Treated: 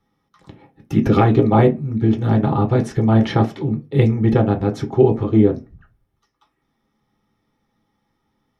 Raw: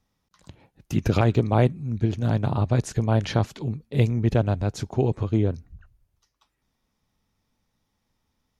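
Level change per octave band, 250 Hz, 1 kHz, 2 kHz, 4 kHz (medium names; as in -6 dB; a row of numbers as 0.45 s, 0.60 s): +9.5 dB, +8.5 dB, +4.0 dB, +2.0 dB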